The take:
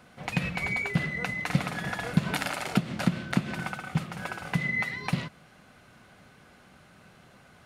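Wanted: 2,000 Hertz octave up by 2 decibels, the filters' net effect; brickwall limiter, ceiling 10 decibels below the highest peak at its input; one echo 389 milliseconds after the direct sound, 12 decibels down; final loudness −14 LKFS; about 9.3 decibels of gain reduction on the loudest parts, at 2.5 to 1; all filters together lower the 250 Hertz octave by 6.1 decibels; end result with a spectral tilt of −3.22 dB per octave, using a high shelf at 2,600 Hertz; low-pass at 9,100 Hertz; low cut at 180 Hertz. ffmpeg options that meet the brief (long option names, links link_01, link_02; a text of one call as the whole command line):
ffmpeg -i in.wav -af "highpass=180,lowpass=9100,equalizer=frequency=250:width_type=o:gain=-5.5,equalizer=frequency=2000:width_type=o:gain=6,highshelf=frequency=2600:gain=-9,acompressor=threshold=-38dB:ratio=2.5,alimiter=level_in=4dB:limit=-24dB:level=0:latency=1,volume=-4dB,aecho=1:1:389:0.251,volume=25dB" out.wav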